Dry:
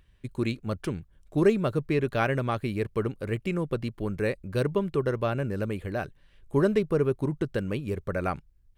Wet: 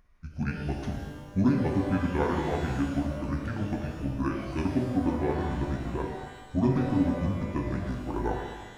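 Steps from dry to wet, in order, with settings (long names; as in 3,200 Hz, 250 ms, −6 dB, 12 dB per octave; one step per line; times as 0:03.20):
pitch shift by two crossfaded delay taps −8 semitones
notch filter 7,600 Hz, Q 5.5
reverb with rising layers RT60 1.3 s, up +12 semitones, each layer −8 dB, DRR 1 dB
level −2 dB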